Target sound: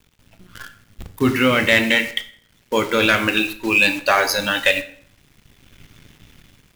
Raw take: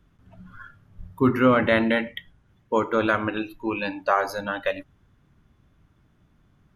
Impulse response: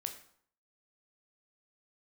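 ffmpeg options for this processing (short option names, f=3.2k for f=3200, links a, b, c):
-filter_complex "[0:a]highshelf=f=1.7k:t=q:w=1.5:g=11,dynaudnorm=f=290:g=5:m=15dB,aeval=exprs='0.944*(cos(1*acos(clip(val(0)/0.944,-1,1)))-cos(1*PI/2))+0.106*(cos(5*acos(clip(val(0)/0.944,-1,1)))-cos(5*PI/2))':c=same,acrusher=bits=6:dc=4:mix=0:aa=0.000001,asplit=2[a][b];[1:a]atrim=start_sample=2205[c];[b][c]afir=irnorm=-1:irlink=0,volume=3.5dB[d];[a][d]amix=inputs=2:normalize=0,volume=-8.5dB"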